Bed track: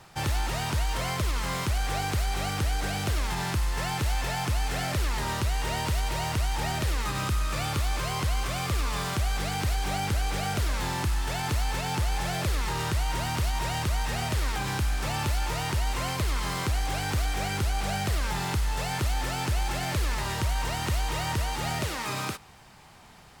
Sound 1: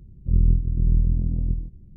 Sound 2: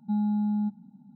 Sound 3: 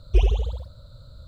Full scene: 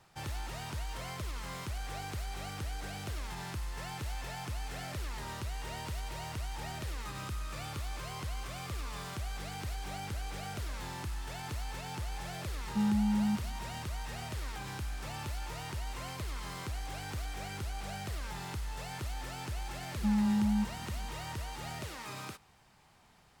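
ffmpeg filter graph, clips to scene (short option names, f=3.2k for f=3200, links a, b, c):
-filter_complex "[2:a]asplit=2[a][b];[0:a]volume=-11.5dB[c];[a]atrim=end=1.15,asetpts=PTS-STARTPTS,volume=-3dB,afade=t=in:d=0.004:c=hsin,afade=t=out:st=1.146:d=0.004:c=hsin,adelay=12670[d];[b]atrim=end=1.15,asetpts=PTS-STARTPTS,volume=-2.5dB,afade=t=in:d=0.004:c=hsin,afade=t=out:st=1.146:d=0.004:c=hsin,adelay=19950[e];[c][d][e]amix=inputs=3:normalize=0"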